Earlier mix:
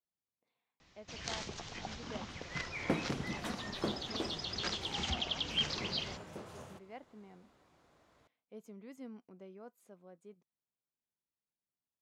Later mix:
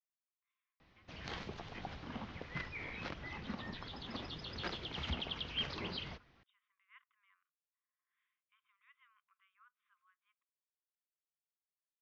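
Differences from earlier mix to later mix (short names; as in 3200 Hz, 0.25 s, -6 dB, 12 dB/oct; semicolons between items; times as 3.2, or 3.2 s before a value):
speech: add brick-wall FIR band-pass 1000–3800 Hz; second sound: muted; reverb: off; master: add air absorption 260 m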